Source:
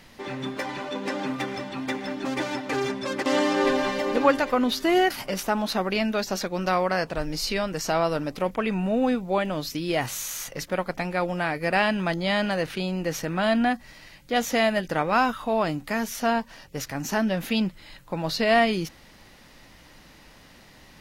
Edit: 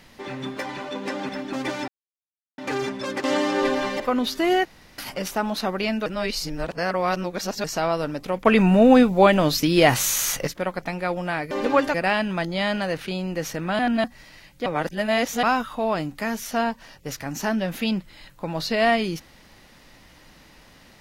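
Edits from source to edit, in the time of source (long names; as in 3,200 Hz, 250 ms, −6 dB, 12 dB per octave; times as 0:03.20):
0:01.29–0:02.01: remove
0:02.60: splice in silence 0.70 s
0:04.02–0:04.45: move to 0:11.63
0:05.10: splice in room tone 0.33 s
0:06.18–0:07.76: reverse
0:08.57–0:10.59: clip gain +9.5 dB
0:13.48–0:13.73: reverse
0:14.35–0:15.12: reverse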